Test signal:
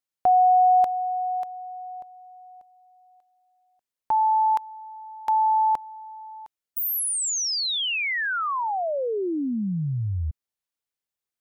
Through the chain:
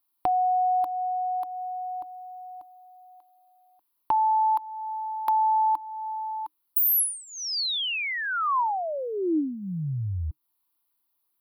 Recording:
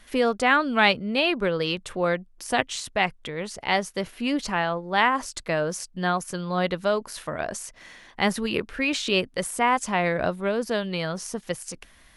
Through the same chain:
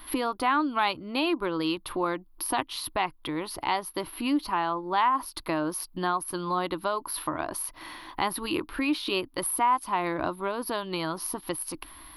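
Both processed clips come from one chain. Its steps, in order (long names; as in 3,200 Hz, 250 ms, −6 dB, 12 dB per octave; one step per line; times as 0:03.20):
drawn EQ curve 140 Hz 0 dB, 220 Hz −8 dB, 310 Hz +13 dB, 450 Hz −6 dB, 690 Hz 0 dB, 1,000 Hz +12 dB, 1,700 Hz −3 dB, 4,500 Hz +3 dB, 7,500 Hz −21 dB, 11,000 Hz +14 dB
downward compressor 2 to 1, threshold −36 dBFS
level +3.5 dB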